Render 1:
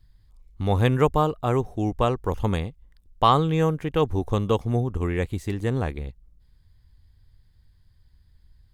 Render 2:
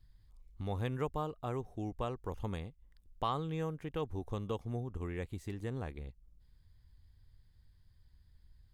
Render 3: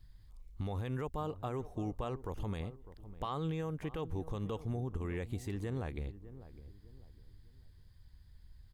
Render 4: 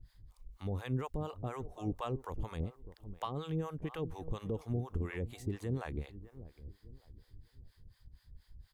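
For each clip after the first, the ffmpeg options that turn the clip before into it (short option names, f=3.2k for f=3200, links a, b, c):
-af "acompressor=threshold=-44dB:ratio=1.5,volume=-6dB"
-filter_complex "[0:a]alimiter=level_in=9dB:limit=-24dB:level=0:latency=1:release=73,volume=-9dB,asplit=2[a][b];[b]adelay=603,lowpass=f=830:p=1,volume=-14dB,asplit=2[c][d];[d]adelay=603,lowpass=f=830:p=1,volume=0.36,asplit=2[e][f];[f]adelay=603,lowpass=f=830:p=1,volume=0.36[g];[a][c][e][g]amix=inputs=4:normalize=0,volume=5dB"
-filter_complex "[0:a]acrossover=split=580[a][b];[a]aeval=exprs='val(0)*(1-1/2+1/2*cos(2*PI*4.2*n/s))':c=same[c];[b]aeval=exprs='val(0)*(1-1/2-1/2*cos(2*PI*4.2*n/s))':c=same[d];[c][d]amix=inputs=2:normalize=0,volume=5dB"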